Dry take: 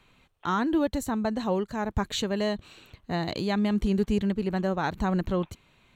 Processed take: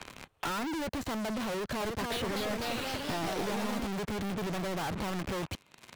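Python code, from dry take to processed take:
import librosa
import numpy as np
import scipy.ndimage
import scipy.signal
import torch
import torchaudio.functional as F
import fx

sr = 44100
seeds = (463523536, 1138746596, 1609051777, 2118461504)

y = fx.rattle_buzz(x, sr, strikes_db=-33.0, level_db=-36.0)
y = fx.highpass(y, sr, hz=140.0, slope=6)
y = fx.env_lowpass_down(y, sr, base_hz=1900.0, full_db=-26.5)
y = fx.dynamic_eq(y, sr, hz=210.0, q=1.2, threshold_db=-40.0, ratio=4.0, max_db=-4)
y = fx.leveller(y, sr, passes=5)
y = np.clip(10.0 ** (35.0 / 20.0) * y, -1.0, 1.0) / 10.0 ** (35.0 / 20.0)
y = fx.echo_pitch(y, sr, ms=313, semitones=2, count=3, db_per_echo=-3.0, at=(1.49, 3.87))
y = fx.band_squash(y, sr, depth_pct=70)
y = y * 10.0 ** (1.0 / 20.0)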